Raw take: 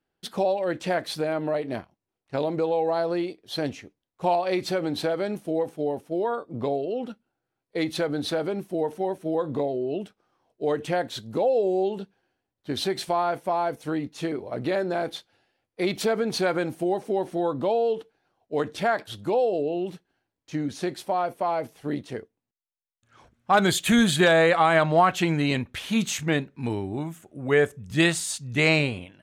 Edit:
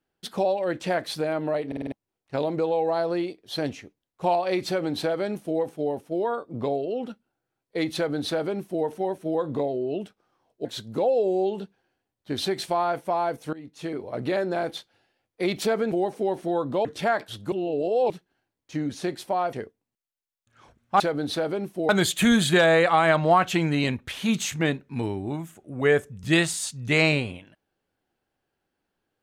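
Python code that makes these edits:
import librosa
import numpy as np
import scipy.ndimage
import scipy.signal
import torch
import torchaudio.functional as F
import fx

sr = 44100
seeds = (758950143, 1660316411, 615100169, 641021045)

y = fx.edit(x, sr, fx.stutter_over(start_s=1.67, slice_s=0.05, count=5),
    fx.duplicate(start_s=7.95, length_s=0.89, to_s=23.56),
    fx.cut(start_s=10.65, length_s=0.39),
    fx.fade_in_from(start_s=13.92, length_s=0.53, floor_db=-19.0),
    fx.cut(start_s=16.31, length_s=0.5),
    fx.cut(start_s=17.74, length_s=0.9),
    fx.reverse_span(start_s=19.31, length_s=0.58),
    fx.cut(start_s=21.32, length_s=0.77), tone=tone)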